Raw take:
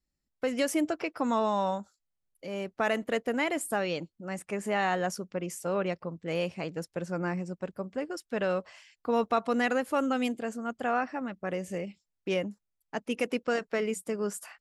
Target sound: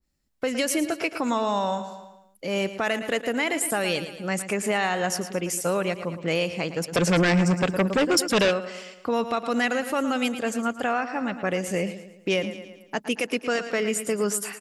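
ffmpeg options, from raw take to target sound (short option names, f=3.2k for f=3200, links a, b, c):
-filter_complex "[0:a]aecho=1:1:112|224|336|448|560:0.224|0.105|0.0495|0.0232|0.0109,acontrast=84,alimiter=limit=-18dB:level=0:latency=1:release=362,asplit=3[a][b][c];[a]afade=t=out:st=6.92:d=0.02[d];[b]aeval=exprs='0.126*sin(PI/2*2*val(0)/0.126)':c=same,afade=t=in:st=6.92:d=0.02,afade=t=out:st=8.5:d=0.02[e];[c]afade=t=in:st=8.5:d=0.02[f];[d][e][f]amix=inputs=3:normalize=0,adynamicequalizer=threshold=0.00708:dfrequency=1800:dqfactor=0.7:tfrequency=1800:tqfactor=0.7:attack=5:release=100:ratio=0.375:range=3:mode=boostabove:tftype=highshelf,volume=1.5dB"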